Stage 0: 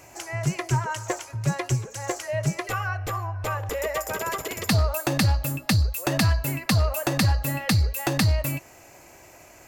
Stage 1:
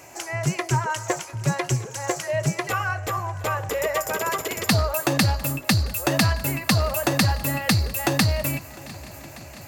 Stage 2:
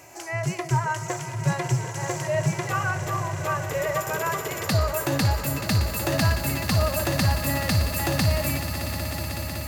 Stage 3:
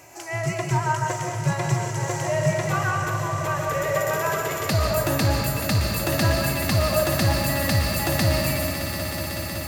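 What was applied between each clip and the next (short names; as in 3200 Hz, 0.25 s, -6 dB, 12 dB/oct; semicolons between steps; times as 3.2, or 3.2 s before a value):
HPF 130 Hz 6 dB/oct; swung echo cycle 1.171 s, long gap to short 1.5:1, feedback 59%, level -21.5 dB; gain +3.5 dB
swelling echo 0.186 s, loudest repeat 5, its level -14.5 dB; harmonic-percussive split percussive -8 dB
reverb RT60 0.85 s, pre-delay 95 ms, DRR 2 dB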